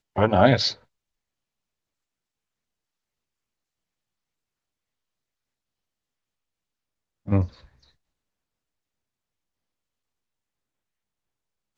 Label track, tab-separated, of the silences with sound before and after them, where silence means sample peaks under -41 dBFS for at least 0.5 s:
0.750000	7.270000	silence